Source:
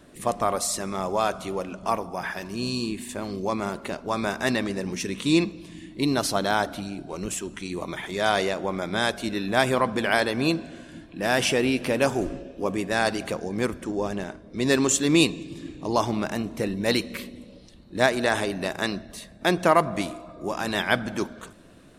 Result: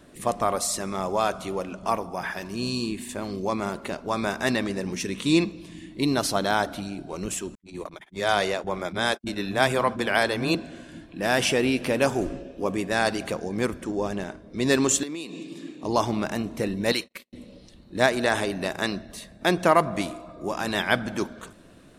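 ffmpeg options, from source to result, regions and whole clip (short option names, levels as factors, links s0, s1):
-filter_complex "[0:a]asettb=1/sr,asplit=3[s0][s1][s2];[s0]atrim=end=7.554[s3];[s1]atrim=start=7.55:end=10.55,asetpts=PTS-STARTPTS,afade=t=in:d=0.004:c=qsin,afade=t=out:st=2.996:d=0.004:c=qsin,agate=range=0.00112:threshold=0.0251:ratio=16:release=100:detection=peak,acrossover=split=240[s4][s5];[s5]adelay=30[s6];[s4][s6]amix=inputs=2:normalize=0,atrim=end_sample=132300[s7];[s2]atrim=start=10.546[s8];[s3][s7]acrossfade=d=0.004:c1=hsin:c2=qsin[s9];[s9][s8]acrossfade=d=0.004:c1=qsin:c2=hsin,asettb=1/sr,asplit=3[s10][s11][s12];[s10]atrim=end=15.034[s13];[s11]atrim=start=15.03:end=15.84,asetpts=PTS-STARTPTS,afade=t=in:d=0.004:c=qsin,afade=t=out:st=0.806:d=0.004:c=qsin,highpass=f=180:w=0.5412,highpass=f=180:w=1.3066,acompressor=threshold=0.0316:ratio=16:attack=3.2:release=140:knee=1:detection=peak[s14];[s12]atrim=start=15.836[s15];[s13][s14]acrossfade=d=0.004:c1=hsin:c2=qsin[s16];[s16][s15]acrossfade=d=0.004:c1=qsin:c2=hsin,asettb=1/sr,asplit=3[s17][s18][s19];[s17]atrim=end=16.924[s20];[s18]atrim=start=16.92:end=17.33,asetpts=PTS-STARTPTS,afade=t=in:d=0.004:c=qsin,afade=t=out:st=0.406:d=0.004:c=qsin,bandreject=f=50:t=h:w=6,bandreject=f=100:t=h:w=6,bandreject=f=150:t=h:w=6,bandreject=f=200:t=h:w=6,agate=range=0.00794:threshold=0.02:ratio=16:release=100:detection=peak,lowshelf=f=420:g=-11.5[s21];[s19]atrim=start=17.326[s22];[s20][s21]acrossfade=d=0.004:c1=hsin:c2=qsin[s23];[s23][s22]acrossfade=d=0.004:c1=qsin:c2=hsin"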